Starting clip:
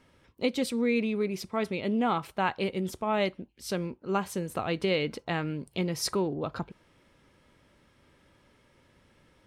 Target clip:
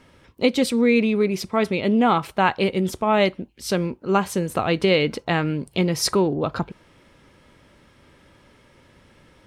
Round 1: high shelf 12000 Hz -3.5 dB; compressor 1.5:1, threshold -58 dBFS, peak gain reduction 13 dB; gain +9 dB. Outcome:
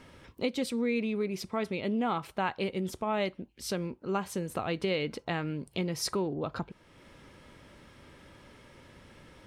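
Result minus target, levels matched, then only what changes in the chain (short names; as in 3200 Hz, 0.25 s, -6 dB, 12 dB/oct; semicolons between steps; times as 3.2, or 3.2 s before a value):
compressor: peak gain reduction +13 dB
remove: compressor 1.5:1, threshold -58 dBFS, peak gain reduction 13 dB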